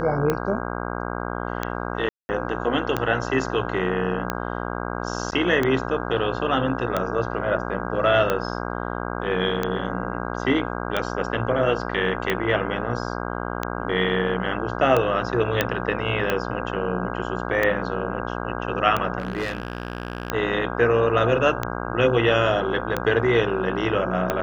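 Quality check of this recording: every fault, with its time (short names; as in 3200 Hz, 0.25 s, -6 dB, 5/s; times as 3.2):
buzz 60 Hz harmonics 27 -29 dBFS
tick 45 rpm -9 dBFS
2.09–2.29 gap 0.2 s
5.31–5.32 gap 9.7 ms
15.61 pop -5 dBFS
19.18–20.32 clipped -22 dBFS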